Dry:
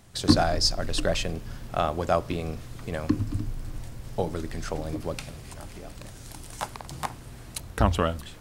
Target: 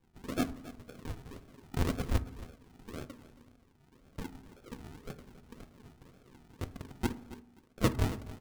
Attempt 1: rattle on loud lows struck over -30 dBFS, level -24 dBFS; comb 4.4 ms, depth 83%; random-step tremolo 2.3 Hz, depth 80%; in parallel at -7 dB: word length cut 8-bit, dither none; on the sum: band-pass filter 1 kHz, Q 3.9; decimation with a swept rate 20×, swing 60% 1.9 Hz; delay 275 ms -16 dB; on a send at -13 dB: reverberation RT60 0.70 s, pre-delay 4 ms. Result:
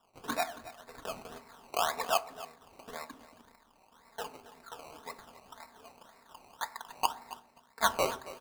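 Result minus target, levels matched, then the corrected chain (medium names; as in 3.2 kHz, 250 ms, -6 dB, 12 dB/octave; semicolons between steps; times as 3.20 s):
decimation with a swept rate: distortion -22 dB
rattle on loud lows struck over -30 dBFS, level -24 dBFS; comb 4.4 ms, depth 83%; random-step tremolo 2.3 Hz, depth 80%; in parallel at -7 dB: word length cut 8-bit, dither none; on the sum: band-pass filter 1 kHz, Q 3.9; decimation with a swept rate 64×, swing 60% 1.9 Hz; delay 275 ms -16 dB; on a send at -13 dB: reverberation RT60 0.70 s, pre-delay 4 ms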